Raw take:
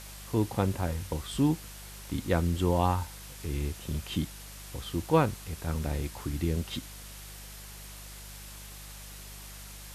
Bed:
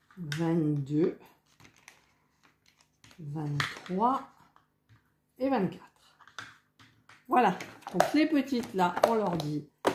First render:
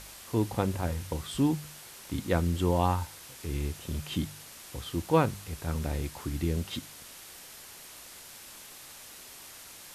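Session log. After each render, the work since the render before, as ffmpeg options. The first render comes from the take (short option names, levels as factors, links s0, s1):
-af "bandreject=f=50:t=h:w=4,bandreject=f=100:t=h:w=4,bandreject=f=150:t=h:w=4,bandreject=f=200:t=h:w=4"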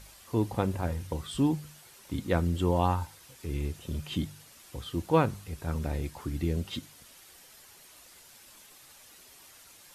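-af "afftdn=nr=8:nf=-48"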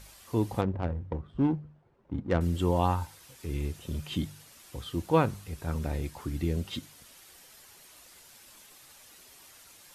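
-filter_complex "[0:a]asettb=1/sr,asplit=3[s0][s1][s2];[s0]atrim=end=0.614[s3];[s1]atrim=start=0.61:end=2.41,asetpts=PTS-STARTPTS,afade=t=in:d=0.004:c=qsin,afade=t=out:st=1.796:d=0.004:c=qsin,adynamicsmooth=sensitivity=2:basefreq=610[s4];[s2]atrim=start=2.406[s5];[s3][s4]acrossfade=d=0.004:c1=hsin:c2=qsin[s6];[s6][s5]acrossfade=d=0.004:c1=qsin:c2=hsin"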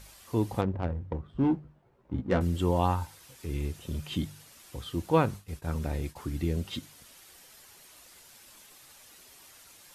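-filter_complex "[0:a]asettb=1/sr,asplit=3[s0][s1][s2];[s0]atrim=end=1.424[s3];[s1]atrim=start=1.42:end=2.42,asetpts=PTS-STARTPTS,afade=t=in:d=0.004:c=qsin,afade=t=out:st=0.996:d=0.004:c=qsin,asplit=2[s4][s5];[s5]adelay=16,volume=0.596[s6];[s4][s6]amix=inputs=2:normalize=0,atrim=end_sample=44100[s7];[s2]atrim=start=2.416[s8];[s3][s7]acrossfade=d=0.004:c1=hsin:c2=qsin[s9];[s9][s8]acrossfade=d=0.004:c1=qsin:c2=hsin,asettb=1/sr,asplit=3[s10][s11][s12];[s10]atrim=end=5.184[s13];[s11]atrim=start=5.18:end=6.16,asetpts=PTS-STARTPTS,afade=t=in:d=0.004:c=qsin,afade=t=out:st=0.976:d=0.004:c=qsin,agate=range=0.0224:threshold=0.00891:ratio=3:release=100:detection=peak[s14];[s12]atrim=start=6.156[s15];[s13][s14]acrossfade=d=0.004:c1=hsin:c2=qsin[s16];[s16][s15]acrossfade=d=0.004:c1=qsin:c2=hsin"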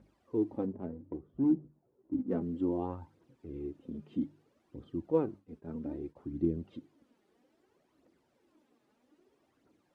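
-af "bandpass=f=300:t=q:w=2.2:csg=0,aphaser=in_gain=1:out_gain=1:delay=5:decay=0.5:speed=0.62:type=triangular"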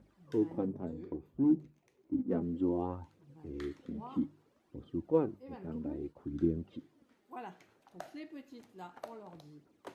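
-filter_complex "[1:a]volume=0.0841[s0];[0:a][s0]amix=inputs=2:normalize=0"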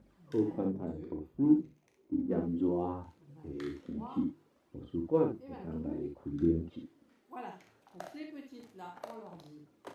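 -af "aecho=1:1:36|63:0.355|0.531"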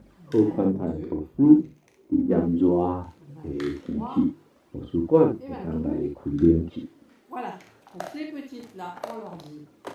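-af "volume=3.35"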